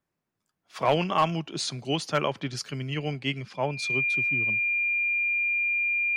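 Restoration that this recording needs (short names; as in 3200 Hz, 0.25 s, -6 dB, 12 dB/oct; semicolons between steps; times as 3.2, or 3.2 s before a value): clip repair -13.5 dBFS; notch 2400 Hz, Q 30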